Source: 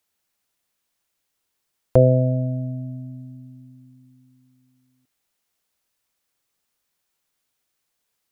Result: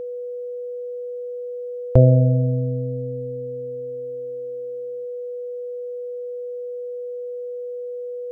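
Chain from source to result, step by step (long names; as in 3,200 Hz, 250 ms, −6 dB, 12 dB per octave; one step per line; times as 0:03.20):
low-shelf EQ 160 Hz +11.5 dB
steady tone 490 Hz −25 dBFS
level −2.5 dB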